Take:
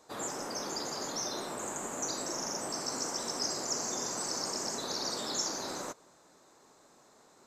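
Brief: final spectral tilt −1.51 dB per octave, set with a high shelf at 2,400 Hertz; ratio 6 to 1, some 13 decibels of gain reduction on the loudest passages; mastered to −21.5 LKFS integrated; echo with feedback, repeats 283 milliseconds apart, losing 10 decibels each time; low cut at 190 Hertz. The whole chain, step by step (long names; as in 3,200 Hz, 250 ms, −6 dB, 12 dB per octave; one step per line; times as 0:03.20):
high-pass filter 190 Hz
high-shelf EQ 2,400 Hz +7.5 dB
downward compressor 6 to 1, threshold −38 dBFS
repeating echo 283 ms, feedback 32%, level −10 dB
level +16.5 dB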